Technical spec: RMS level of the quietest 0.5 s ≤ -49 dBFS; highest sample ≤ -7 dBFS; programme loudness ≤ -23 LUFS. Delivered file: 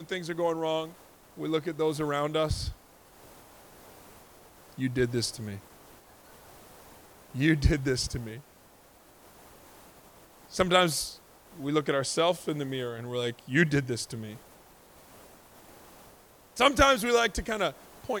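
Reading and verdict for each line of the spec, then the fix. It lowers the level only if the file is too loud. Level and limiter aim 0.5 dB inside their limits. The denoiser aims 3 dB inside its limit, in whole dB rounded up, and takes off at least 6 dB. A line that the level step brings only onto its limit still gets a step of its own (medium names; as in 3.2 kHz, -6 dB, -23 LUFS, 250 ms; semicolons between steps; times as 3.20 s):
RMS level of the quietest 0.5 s -57 dBFS: pass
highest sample -6.0 dBFS: fail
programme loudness -28.0 LUFS: pass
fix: peak limiter -7.5 dBFS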